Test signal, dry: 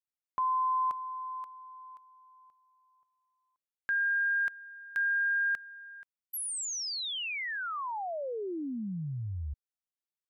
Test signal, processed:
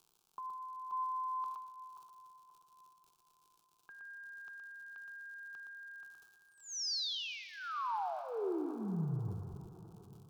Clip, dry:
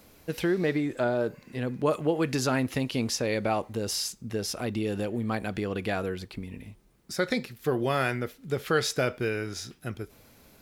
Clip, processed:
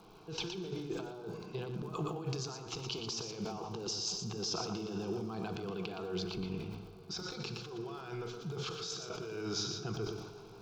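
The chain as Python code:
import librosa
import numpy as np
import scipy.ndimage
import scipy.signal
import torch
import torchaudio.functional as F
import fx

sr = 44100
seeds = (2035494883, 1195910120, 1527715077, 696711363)

y = scipy.signal.sosfilt(scipy.signal.butter(8, 6600.0, 'lowpass', fs=sr, output='sos'), x)
y = fx.env_lowpass(y, sr, base_hz=2800.0, full_db=-23.5)
y = fx.low_shelf(y, sr, hz=230.0, db=-5.5)
y = fx.over_compress(y, sr, threshold_db=-38.0, ratio=-1.0)
y = fx.dmg_crackle(y, sr, seeds[0], per_s=93.0, level_db=-51.0)
y = fx.fixed_phaser(y, sr, hz=380.0, stages=8)
y = y + 10.0 ** (-6.5 / 20.0) * np.pad(y, (int(118 * sr / 1000.0), 0))[:len(y)]
y = fx.rev_plate(y, sr, seeds[1], rt60_s=4.4, hf_ratio=0.55, predelay_ms=0, drr_db=9.0)
y = fx.sustainer(y, sr, db_per_s=51.0)
y = y * librosa.db_to_amplitude(-1.0)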